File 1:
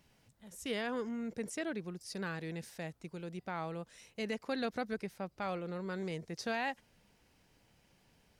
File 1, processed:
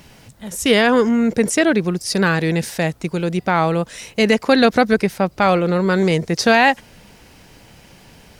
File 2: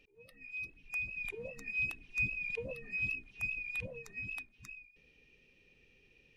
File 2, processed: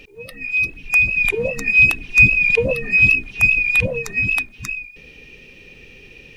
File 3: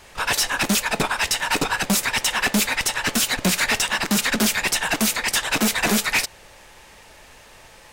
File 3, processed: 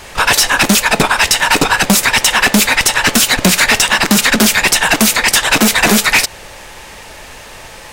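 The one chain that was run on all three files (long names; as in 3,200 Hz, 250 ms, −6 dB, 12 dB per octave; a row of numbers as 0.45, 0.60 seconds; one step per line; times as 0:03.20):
downward compressor, threshold −21 dBFS
normalise the peak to −1.5 dBFS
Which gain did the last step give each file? +23.0, +23.0, +13.5 decibels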